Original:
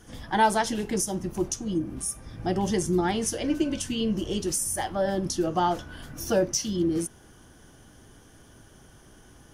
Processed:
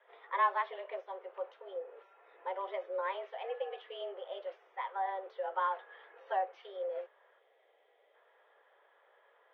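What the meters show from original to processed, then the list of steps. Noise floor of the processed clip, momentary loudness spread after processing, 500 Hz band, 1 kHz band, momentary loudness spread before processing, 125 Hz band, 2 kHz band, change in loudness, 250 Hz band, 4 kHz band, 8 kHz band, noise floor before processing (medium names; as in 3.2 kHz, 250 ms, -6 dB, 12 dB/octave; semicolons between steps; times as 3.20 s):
-69 dBFS, 12 LU, -10.0 dB, -6.0 dB, 7 LU, under -40 dB, -7.5 dB, -11.0 dB, under -35 dB, -18.0 dB, under -40 dB, -53 dBFS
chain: mistuned SSB +190 Hz 240–3500 Hz; three-band isolator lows -13 dB, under 550 Hz, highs -23 dB, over 2.8 kHz; time-frequency box 7.39–8.14 s, 830–1900 Hz -9 dB; trim -7 dB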